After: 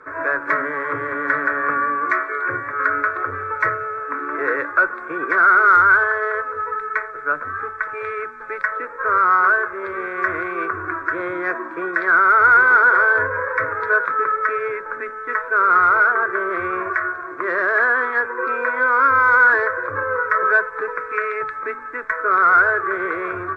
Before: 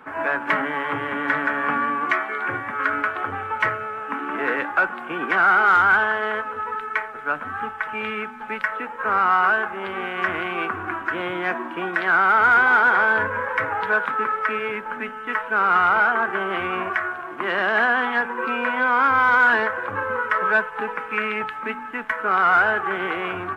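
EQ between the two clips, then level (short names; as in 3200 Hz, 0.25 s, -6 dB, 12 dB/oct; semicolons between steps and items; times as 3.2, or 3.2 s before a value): air absorption 79 m; fixed phaser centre 800 Hz, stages 6; +4.5 dB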